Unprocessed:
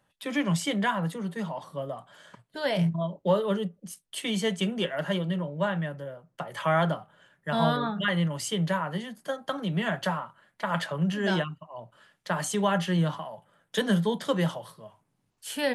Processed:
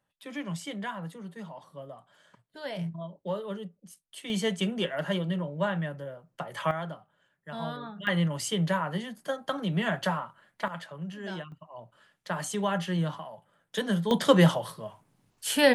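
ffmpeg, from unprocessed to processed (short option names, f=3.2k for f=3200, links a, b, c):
-af "asetnsamples=n=441:p=0,asendcmd='4.3 volume volume -1dB;6.71 volume volume -11dB;8.07 volume volume 0dB;10.68 volume volume -11dB;11.52 volume volume -3.5dB;14.11 volume volume 7dB',volume=-9dB"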